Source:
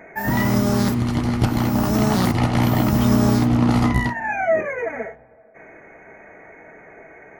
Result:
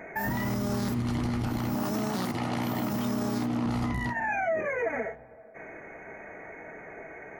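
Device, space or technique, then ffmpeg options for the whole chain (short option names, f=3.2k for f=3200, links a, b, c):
stacked limiters: -filter_complex "[0:a]asettb=1/sr,asplit=3[a][b][c];[a]atrim=end=1.744[d];[b]atrim=start=1.74:end=3.66,asetpts=PTS-STARTPTS,afade=t=in:d=0.004:c=qsin,afade=t=out:st=1.916:d=0.004:c=qsin,highpass=170[e];[c]atrim=start=3.656[f];[d][e]acrossfade=d=0.004:c1=hsin:c2=qsin[g];[g][f]acrossfade=d=0.004:c1=qsin:c2=hsin,alimiter=limit=-12dB:level=0:latency=1:release=38,alimiter=limit=-18dB:level=0:latency=1:release=319,alimiter=limit=-21.5dB:level=0:latency=1:release=54"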